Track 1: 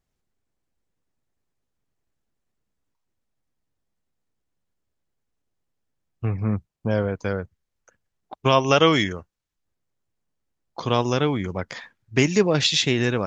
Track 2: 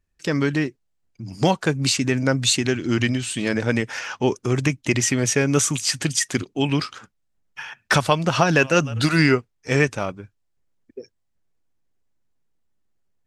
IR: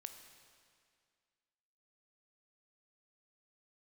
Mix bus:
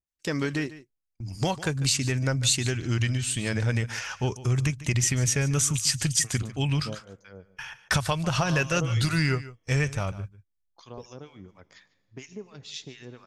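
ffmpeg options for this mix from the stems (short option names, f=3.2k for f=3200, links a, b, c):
-filter_complex "[0:a]acompressor=threshold=-18dB:ratio=6,acrossover=split=1100[a][b];[a]aeval=exprs='val(0)*(1-1/2+1/2*cos(2*PI*4.2*n/s))':c=same[c];[b]aeval=exprs='val(0)*(1-1/2-1/2*cos(2*PI*4.2*n/s))':c=same[d];[c][d]amix=inputs=2:normalize=0,volume=-11dB,asplit=3[e][f][g];[f]volume=-12dB[h];[g]volume=-23.5dB[i];[1:a]agate=range=-24dB:threshold=-39dB:ratio=16:detection=peak,asubboost=boost=11:cutoff=90,acompressor=threshold=-19dB:ratio=2,volume=-5dB,asplit=3[j][k][l];[k]volume=-16.5dB[m];[l]apad=whole_len=585184[n];[e][n]sidechaingate=range=-7dB:threshold=-40dB:ratio=16:detection=peak[o];[2:a]atrim=start_sample=2205[p];[h][p]afir=irnorm=-1:irlink=0[q];[i][m]amix=inputs=2:normalize=0,aecho=0:1:147:1[r];[o][j][q][r]amix=inputs=4:normalize=0,highshelf=f=5.5k:g=8.5"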